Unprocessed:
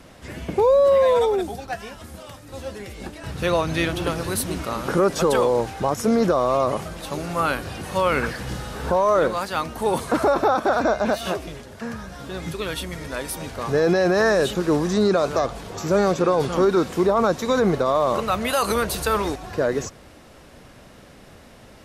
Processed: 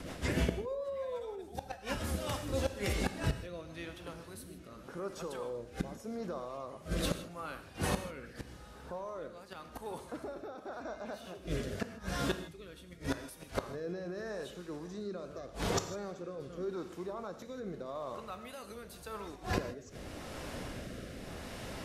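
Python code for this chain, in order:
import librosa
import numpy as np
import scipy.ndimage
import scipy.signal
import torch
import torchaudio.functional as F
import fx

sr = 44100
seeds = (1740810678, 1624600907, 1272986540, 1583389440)

y = fx.rotary_switch(x, sr, hz=6.7, then_hz=0.85, switch_at_s=1.78)
y = fx.gate_flip(y, sr, shuts_db=-24.0, range_db=-25)
y = fx.rev_gated(y, sr, seeds[0], gate_ms=180, shape='flat', drr_db=8.5)
y = y * librosa.db_to_amplitude(4.5)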